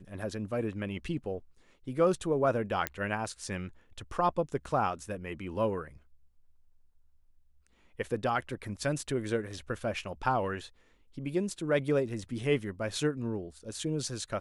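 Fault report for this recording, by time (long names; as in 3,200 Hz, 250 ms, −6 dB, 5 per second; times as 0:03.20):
0:02.87: click −12 dBFS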